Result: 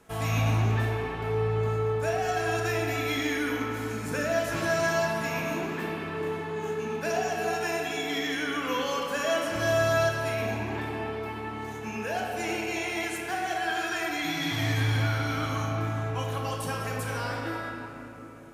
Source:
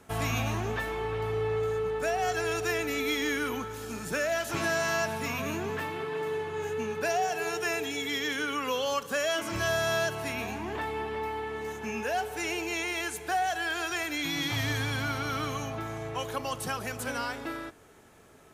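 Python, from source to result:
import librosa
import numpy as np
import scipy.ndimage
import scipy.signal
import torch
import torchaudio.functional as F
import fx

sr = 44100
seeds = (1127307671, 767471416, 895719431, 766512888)

y = fx.room_shoebox(x, sr, seeds[0], volume_m3=220.0, walls='hard', distance_m=0.62)
y = F.gain(torch.from_numpy(y), -3.0).numpy()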